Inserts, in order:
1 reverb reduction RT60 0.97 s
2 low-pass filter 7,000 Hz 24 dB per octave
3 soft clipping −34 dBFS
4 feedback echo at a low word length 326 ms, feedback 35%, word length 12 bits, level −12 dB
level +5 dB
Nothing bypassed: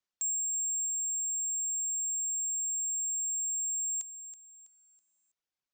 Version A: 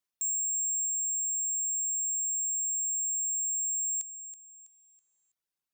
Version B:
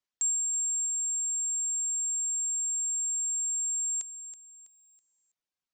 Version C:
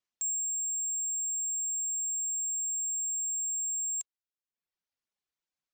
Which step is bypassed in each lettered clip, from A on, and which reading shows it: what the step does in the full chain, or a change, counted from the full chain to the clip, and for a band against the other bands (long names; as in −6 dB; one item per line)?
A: 2, change in integrated loudness +2.0 LU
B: 3, distortion level −19 dB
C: 4, change in momentary loudness spread −4 LU